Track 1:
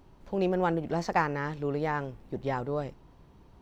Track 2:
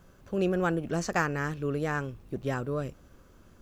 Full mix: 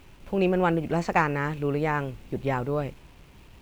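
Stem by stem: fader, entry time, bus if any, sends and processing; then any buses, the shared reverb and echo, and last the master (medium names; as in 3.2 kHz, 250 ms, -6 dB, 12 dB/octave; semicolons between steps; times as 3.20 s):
+1.5 dB, 0.00 s, no send, bass shelf 110 Hz +4.5 dB; band-stop 5.1 kHz, Q 20; word length cut 10-bit, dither none
-8.5 dB, 0.00 s, no send, overload inside the chain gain 17.5 dB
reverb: none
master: peaking EQ 2.6 kHz +8.5 dB 0.71 oct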